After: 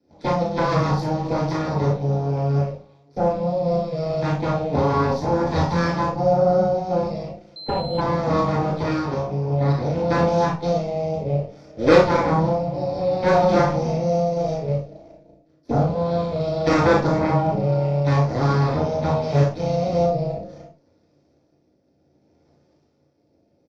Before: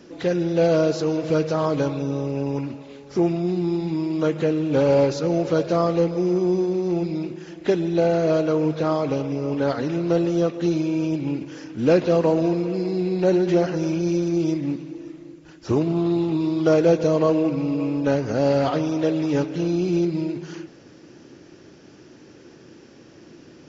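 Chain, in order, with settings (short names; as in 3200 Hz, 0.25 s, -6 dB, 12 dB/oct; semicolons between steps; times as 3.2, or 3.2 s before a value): rotary speaker horn 6.7 Hz, later 0.65 Hz, at 0.83; added harmonics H 3 -10 dB, 6 -12 dB, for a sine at -6.5 dBFS; 5.38–5.92 doubler 23 ms -4 dB; early reflections 35 ms -4.5 dB, 55 ms -8 dB; reverb, pre-delay 3 ms, DRR -4 dB; dynamic EQ 420 Hz, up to -4 dB, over -18 dBFS, Q 1.3; 7.56–8.01 pulse-width modulation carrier 4100 Hz; gain -8 dB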